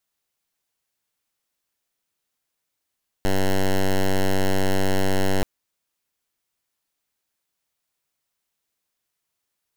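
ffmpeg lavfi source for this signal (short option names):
-f lavfi -i "aevalsrc='0.119*(2*lt(mod(95.9*t,1),0.08)-1)':d=2.18:s=44100"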